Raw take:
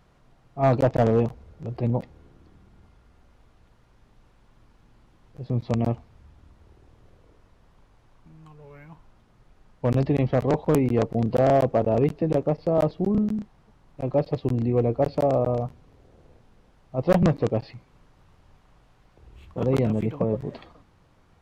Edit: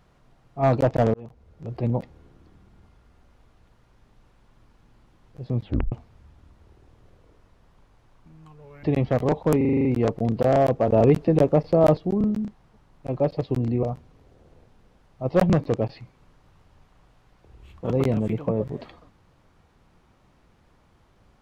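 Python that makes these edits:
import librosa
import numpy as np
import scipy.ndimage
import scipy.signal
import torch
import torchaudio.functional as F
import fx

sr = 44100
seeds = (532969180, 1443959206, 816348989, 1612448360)

y = fx.edit(x, sr, fx.fade_in_span(start_s=1.14, length_s=0.63),
    fx.tape_stop(start_s=5.6, length_s=0.32),
    fx.cut(start_s=8.83, length_s=1.22),
    fx.stutter(start_s=10.79, slice_s=0.04, count=8),
    fx.clip_gain(start_s=11.82, length_s=1.1, db=4.5),
    fx.cut(start_s=14.77, length_s=0.79), tone=tone)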